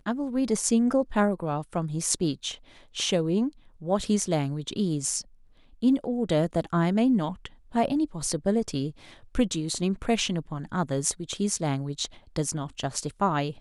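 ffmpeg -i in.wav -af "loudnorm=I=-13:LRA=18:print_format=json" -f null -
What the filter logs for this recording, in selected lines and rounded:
"input_i" : "-27.6",
"input_tp" : "-5.6",
"input_lra" : "2.3",
"input_thresh" : "-37.8",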